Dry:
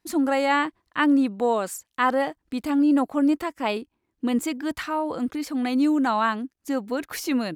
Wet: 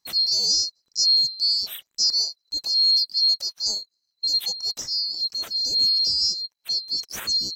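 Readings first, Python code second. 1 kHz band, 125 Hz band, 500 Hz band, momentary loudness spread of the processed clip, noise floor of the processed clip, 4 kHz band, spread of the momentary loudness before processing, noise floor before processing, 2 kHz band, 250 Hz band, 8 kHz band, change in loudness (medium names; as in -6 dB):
under -25 dB, no reading, under -20 dB, 9 LU, -77 dBFS, +21.0 dB, 9 LU, -77 dBFS, under -15 dB, under -30 dB, +10.5 dB, +3.5 dB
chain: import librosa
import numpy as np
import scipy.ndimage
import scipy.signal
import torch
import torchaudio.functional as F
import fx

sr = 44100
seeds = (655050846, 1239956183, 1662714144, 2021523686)

y = fx.band_swap(x, sr, width_hz=4000)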